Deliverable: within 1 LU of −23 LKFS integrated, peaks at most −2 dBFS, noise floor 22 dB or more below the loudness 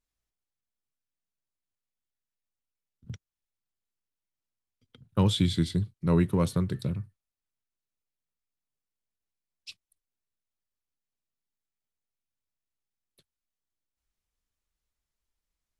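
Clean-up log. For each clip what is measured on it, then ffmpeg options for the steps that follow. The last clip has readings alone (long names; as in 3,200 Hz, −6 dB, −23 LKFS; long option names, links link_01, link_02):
integrated loudness −27.5 LKFS; sample peak −12.5 dBFS; target loudness −23.0 LKFS
→ -af "volume=4.5dB"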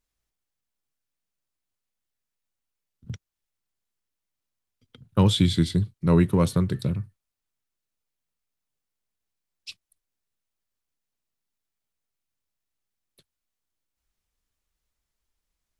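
integrated loudness −23.0 LKFS; sample peak −8.0 dBFS; background noise floor −85 dBFS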